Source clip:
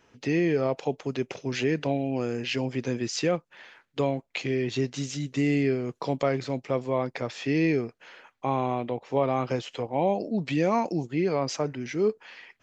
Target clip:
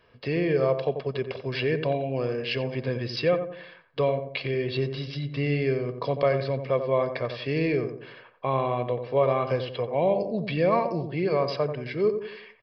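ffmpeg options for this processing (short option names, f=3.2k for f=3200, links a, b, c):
-filter_complex "[0:a]aecho=1:1:1.8:0.57,aresample=11025,aresample=44100,asplit=2[a][b];[b]adelay=89,lowpass=f=1.1k:p=1,volume=-7dB,asplit=2[c][d];[d]adelay=89,lowpass=f=1.1k:p=1,volume=0.45,asplit=2[e][f];[f]adelay=89,lowpass=f=1.1k:p=1,volume=0.45,asplit=2[g][h];[h]adelay=89,lowpass=f=1.1k:p=1,volume=0.45,asplit=2[i][j];[j]adelay=89,lowpass=f=1.1k:p=1,volume=0.45[k];[a][c][e][g][i][k]amix=inputs=6:normalize=0"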